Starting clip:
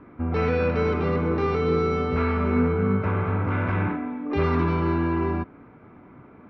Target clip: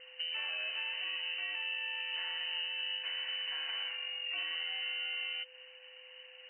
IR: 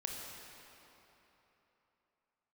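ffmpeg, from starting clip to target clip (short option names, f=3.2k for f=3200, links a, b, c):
-af "lowpass=f=2.6k:t=q:w=0.5098,lowpass=f=2.6k:t=q:w=0.6013,lowpass=f=2.6k:t=q:w=0.9,lowpass=f=2.6k:t=q:w=2.563,afreqshift=-3100,acompressor=threshold=-31dB:ratio=4,aeval=exprs='val(0)+0.002*sin(2*PI*510*n/s)':c=same,volume=-6dB"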